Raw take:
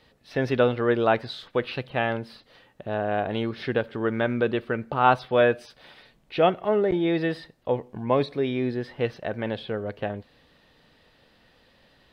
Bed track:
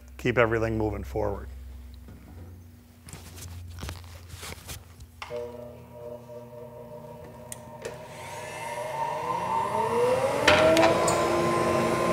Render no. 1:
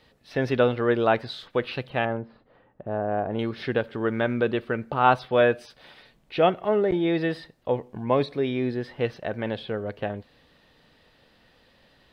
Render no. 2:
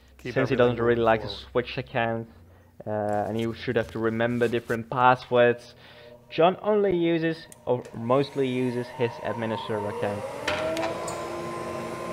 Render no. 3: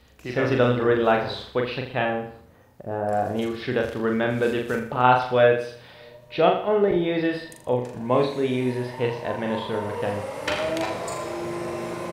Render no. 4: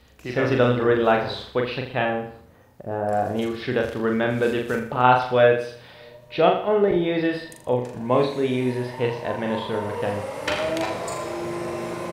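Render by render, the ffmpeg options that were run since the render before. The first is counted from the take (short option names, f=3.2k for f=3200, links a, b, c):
-filter_complex "[0:a]asettb=1/sr,asplit=3[a][b][c];[a]atrim=end=2.054[d];[b]atrim=start=2.05:end=3.39,asetpts=PTS-STARTPTS,afade=t=in:d=0.004:c=qsin,afade=t=out:st=1.336:d=0.004:c=qsin,lowpass=1.2k[e];[c]atrim=start=3.386[f];[d][e]acrossfade=d=0.004:c1=hsin:c2=qsin[g];[g][f]acrossfade=d=0.004:c1=qsin:c2=hsin"
-filter_complex "[1:a]volume=-8.5dB[a];[0:a][a]amix=inputs=2:normalize=0"
-filter_complex "[0:a]asplit=2[a][b];[b]adelay=40,volume=-4dB[c];[a][c]amix=inputs=2:normalize=0,aecho=1:1:81|162|243|324:0.316|0.123|0.0481|0.0188"
-af "volume=1dB"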